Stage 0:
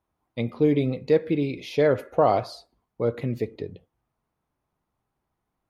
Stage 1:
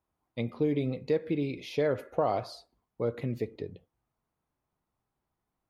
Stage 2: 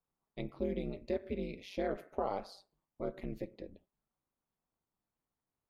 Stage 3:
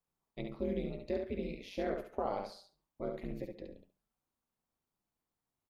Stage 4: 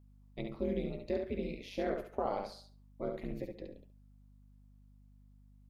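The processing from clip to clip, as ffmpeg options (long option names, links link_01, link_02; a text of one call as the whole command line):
ffmpeg -i in.wav -af "acompressor=threshold=-21dB:ratio=2,volume=-4.5dB" out.wav
ffmpeg -i in.wav -af "aeval=exprs='val(0)*sin(2*PI*96*n/s)':channel_layout=same,volume=-5dB" out.wav
ffmpeg -i in.wav -af "aecho=1:1:69|138|207:0.562|0.107|0.0203,volume=-1dB" out.wav
ffmpeg -i in.wav -af "aeval=exprs='val(0)+0.001*(sin(2*PI*50*n/s)+sin(2*PI*2*50*n/s)/2+sin(2*PI*3*50*n/s)/3+sin(2*PI*4*50*n/s)/4+sin(2*PI*5*50*n/s)/5)':channel_layout=same,volume=1dB" out.wav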